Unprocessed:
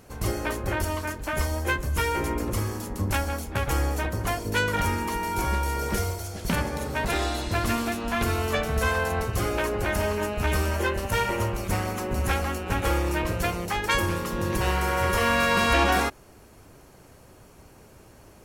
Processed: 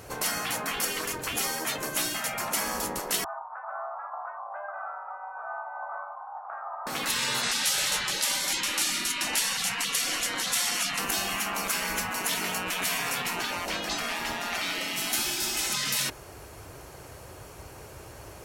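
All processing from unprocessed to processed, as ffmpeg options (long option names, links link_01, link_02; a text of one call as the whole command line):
ffmpeg -i in.wav -filter_complex "[0:a]asettb=1/sr,asplit=3[link_01][link_02][link_03];[link_01]atrim=end=3.244[link_04];[link_02]atrim=start=3.24:end=6.87,asetpts=PTS-STARTPTS,afade=type=in:duration=0.004:curve=qsin,afade=type=out:start_time=3.626:duration=0.004:curve=qsin,asuperpass=centerf=850:order=8:qfactor=1.5,afreqshift=110[link_05];[link_03]atrim=start=6.866[link_06];[link_04][link_05]acrossfade=duration=0.004:curve1=hsin:curve2=qsin[link_07];[link_07][link_06]acrossfade=duration=0.004:curve1=qsin:curve2=hsin,asettb=1/sr,asplit=3[link_08][link_09][link_10];[link_08]atrim=end=7.434[link_11];[link_09]atrim=start=7.43:end=10.99,asetpts=PTS-STARTPTS,afade=type=in:duration=0.004:curve=qsin,afade=type=out:start_time=3.556:duration=0.004:curve=qsin,lowpass=10000,acontrast=54[link_12];[link_10]atrim=start=10.986[link_13];[link_11][link_12]acrossfade=duration=0.004:curve1=hsin:curve2=qsin[link_14];[link_14][link_13]acrossfade=duration=0.004:curve1=qsin:curve2=hsin,asettb=1/sr,asplit=3[link_15][link_16][link_17];[link_15]atrim=end=13.374[link_18];[link_16]atrim=start=13.37:end=14.96,asetpts=PTS-STARTPTS,afade=type=in:duration=0.004:curve=qsin,afade=type=out:start_time=1.586:duration=0.004:curve=qsin,acrossover=split=5300[link_19][link_20];[link_20]acompressor=threshold=-51dB:ratio=4:attack=1:release=60[link_21];[link_19][link_21]amix=inputs=2:normalize=0,highpass=53,asubboost=boost=2.5:cutoff=240[link_22];[link_17]atrim=start=14.956[link_23];[link_18][link_22]acrossfade=duration=0.004:curve1=hsin:curve2=qsin[link_24];[link_24][link_23]acrossfade=duration=0.004:curve1=qsin:curve2=hsin,highpass=49,equalizer=frequency=220:width_type=o:width=0.82:gain=-11,afftfilt=real='re*lt(hypot(re,im),0.0562)':imag='im*lt(hypot(re,im),0.0562)':win_size=1024:overlap=0.75,volume=8dB" out.wav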